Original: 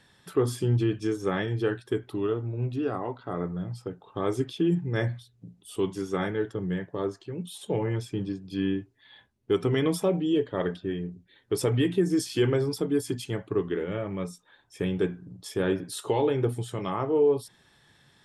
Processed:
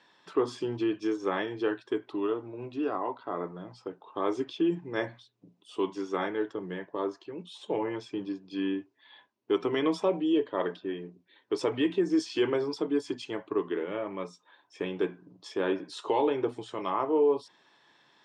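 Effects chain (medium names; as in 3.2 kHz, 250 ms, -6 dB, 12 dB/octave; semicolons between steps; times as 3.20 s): cabinet simulation 300–6300 Hz, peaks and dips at 310 Hz +5 dB, 640 Hz +3 dB, 1 kHz +9 dB, 2.6 kHz +3 dB; trim -2.5 dB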